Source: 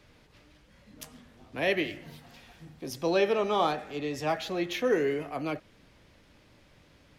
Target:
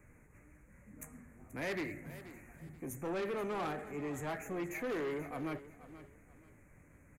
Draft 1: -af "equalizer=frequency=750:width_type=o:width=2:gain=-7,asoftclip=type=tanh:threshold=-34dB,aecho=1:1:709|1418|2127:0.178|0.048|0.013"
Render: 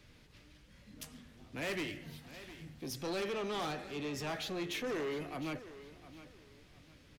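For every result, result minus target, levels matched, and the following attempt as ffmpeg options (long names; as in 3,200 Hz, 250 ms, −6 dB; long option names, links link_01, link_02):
4,000 Hz band +11.0 dB; echo 227 ms late
-af "asuperstop=centerf=4000:order=12:qfactor=0.93,equalizer=frequency=750:width_type=o:width=2:gain=-7,asoftclip=type=tanh:threshold=-34dB,aecho=1:1:709|1418|2127:0.178|0.048|0.013"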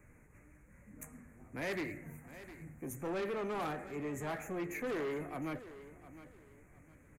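echo 227 ms late
-af "asuperstop=centerf=4000:order=12:qfactor=0.93,equalizer=frequency=750:width_type=o:width=2:gain=-7,asoftclip=type=tanh:threshold=-34dB,aecho=1:1:482|964|1446:0.178|0.048|0.013"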